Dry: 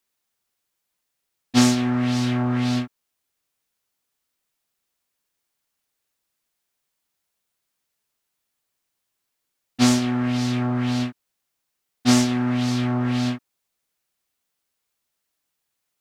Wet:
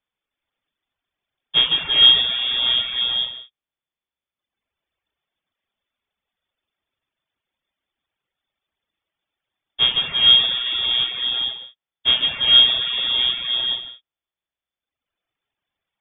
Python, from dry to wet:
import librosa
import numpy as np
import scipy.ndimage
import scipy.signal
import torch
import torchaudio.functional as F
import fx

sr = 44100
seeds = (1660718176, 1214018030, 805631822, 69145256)

y = fx.low_shelf(x, sr, hz=120.0, db=10.5)
y = y + 10.0 ** (-3.0 / 20.0) * np.pad(y, (int(147 * sr / 1000.0), 0))[:len(y)]
y = fx.rev_gated(y, sr, seeds[0], gate_ms=490, shape='rising', drr_db=-3.0)
y = fx.freq_invert(y, sr, carrier_hz=3500)
y = fx.dereverb_blind(y, sr, rt60_s=1.4)
y = y * 10.0 ** (-2.5 / 20.0)